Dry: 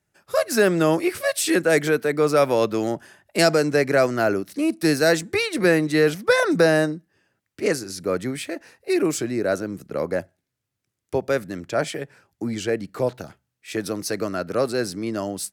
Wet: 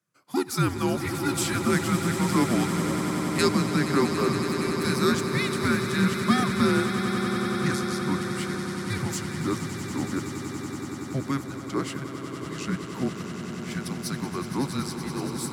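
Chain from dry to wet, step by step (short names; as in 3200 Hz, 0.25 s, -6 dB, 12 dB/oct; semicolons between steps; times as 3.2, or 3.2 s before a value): frequency shift -270 Hz; HPF 120 Hz 24 dB/oct; on a send: swelling echo 94 ms, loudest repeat 8, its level -12 dB; on the sum: gain -5 dB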